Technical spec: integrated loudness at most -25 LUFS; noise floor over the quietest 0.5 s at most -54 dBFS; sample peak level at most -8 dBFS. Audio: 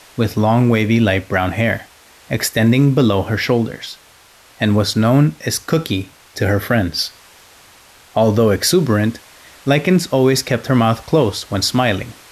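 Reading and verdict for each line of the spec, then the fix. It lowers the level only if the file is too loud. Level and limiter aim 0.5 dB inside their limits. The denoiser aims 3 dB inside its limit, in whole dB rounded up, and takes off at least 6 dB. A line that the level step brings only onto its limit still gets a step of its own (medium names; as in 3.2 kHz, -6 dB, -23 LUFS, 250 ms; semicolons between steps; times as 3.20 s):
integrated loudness -16.5 LUFS: fail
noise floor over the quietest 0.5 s -47 dBFS: fail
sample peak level -3.5 dBFS: fail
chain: trim -9 dB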